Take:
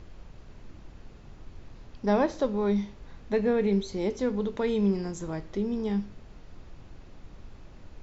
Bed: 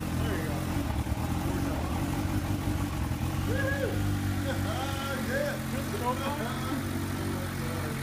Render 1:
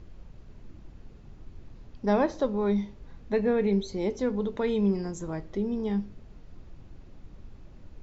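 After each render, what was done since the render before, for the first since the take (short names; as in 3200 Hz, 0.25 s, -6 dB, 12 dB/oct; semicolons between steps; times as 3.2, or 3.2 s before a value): denoiser 6 dB, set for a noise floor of -50 dBFS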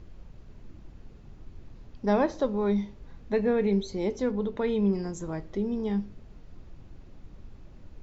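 4.31–4.93 air absorption 80 m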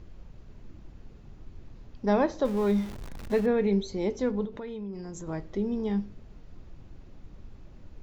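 2.45–3.46 zero-crossing step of -37 dBFS; 4.45–5.27 compressor 4:1, threshold -36 dBFS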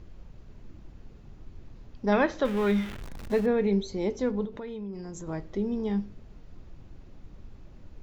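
2.12–3.02 band shelf 2100 Hz +8.5 dB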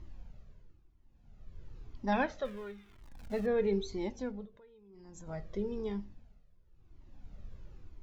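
tremolo 0.53 Hz, depth 88%; cascading flanger falling 1 Hz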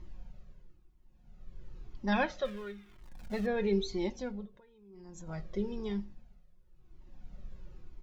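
dynamic EQ 3900 Hz, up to +5 dB, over -57 dBFS, Q 0.75; comb 5.5 ms, depth 46%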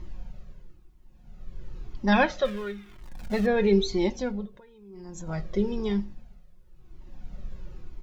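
gain +8.5 dB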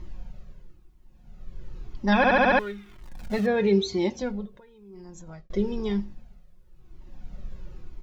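2.17 stutter in place 0.07 s, 6 plays; 3.38–4.22 HPF 60 Hz 24 dB/oct; 4.94–5.5 fade out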